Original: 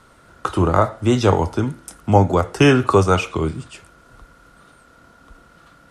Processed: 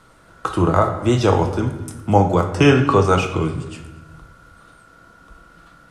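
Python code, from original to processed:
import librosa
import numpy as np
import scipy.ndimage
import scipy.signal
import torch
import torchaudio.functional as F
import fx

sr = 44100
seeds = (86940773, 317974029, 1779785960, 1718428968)

y = fx.lowpass(x, sr, hz=fx.line((2.45, 10000.0), (3.03, 5200.0)), slope=12, at=(2.45, 3.03), fade=0.02)
y = y + 10.0 ** (-22.0 / 20.0) * np.pad(y, (int(230 * sr / 1000.0), 0))[:len(y)]
y = fx.room_shoebox(y, sr, seeds[0], volume_m3=430.0, walls='mixed', distance_m=0.65)
y = y * 10.0 ** (-1.0 / 20.0)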